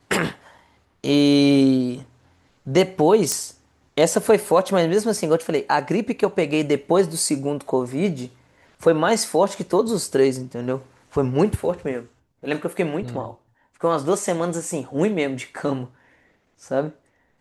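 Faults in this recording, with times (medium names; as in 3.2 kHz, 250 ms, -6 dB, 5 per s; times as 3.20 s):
3.32 s: pop -6 dBFS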